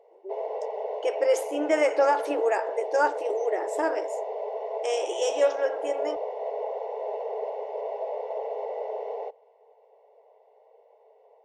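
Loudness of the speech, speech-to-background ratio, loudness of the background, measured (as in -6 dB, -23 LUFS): -27.0 LUFS, 6.0 dB, -33.0 LUFS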